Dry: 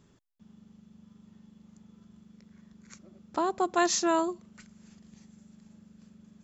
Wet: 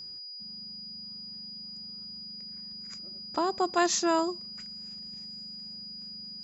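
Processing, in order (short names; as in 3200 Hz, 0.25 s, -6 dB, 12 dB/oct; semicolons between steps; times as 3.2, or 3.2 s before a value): whine 4900 Hz -40 dBFS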